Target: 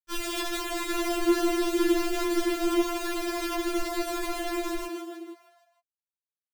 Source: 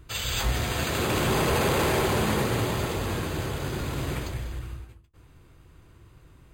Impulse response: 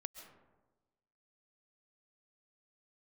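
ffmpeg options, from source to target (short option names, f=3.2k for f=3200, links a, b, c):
-filter_complex "[0:a]aemphasis=mode=reproduction:type=riaa,acrossover=split=120|270[a][b][c];[a]acompressor=threshold=-20dB:ratio=4[d];[b]acompressor=threshold=-33dB:ratio=4[e];[c]acompressor=threshold=-35dB:ratio=4[f];[d][e][f]amix=inputs=3:normalize=0,acrusher=bits=3:mix=0:aa=0.000001,asettb=1/sr,asplit=3[g][h][i];[g]atrim=end=1.144[j];[h]atrim=start=1.14:end=2.67,asetpts=PTS-STARTPTS,afade=t=in:d=0.004:c=qsin,afade=t=out:st=1.526:d=0.004:c=qsin,afreqshift=-360[k];[i]atrim=start=2.666[l];[j][k]acrossfade=d=0.004:c1=hsin:c2=qsin[m];[m][l]acrossfade=d=0.004:c1=qsin:c2=hsin,asplit=7[n][o][p][q][r][s][t];[o]adelay=157,afreqshift=90,volume=-6dB[u];[p]adelay=314,afreqshift=180,volume=-12.2dB[v];[q]adelay=471,afreqshift=270,volume=-18.4dB[w];[r]adelay=628,afreqshift=360,volume=-24.6dB[x];[s]adelay=785,afreqshift=450,volume=-30.8dB[y];[t]adelay=942,afreqshift=540,volume=-37dB[z];[n][u][v][w][x][y][z]amix=inputs=7:normalize=0,afftfilt=real='re*4*eq(mod(b,16),0)':imag='im*4*eq(mod(b,16),0)':win_size=2048:overlap=0.75,volume=-2dB"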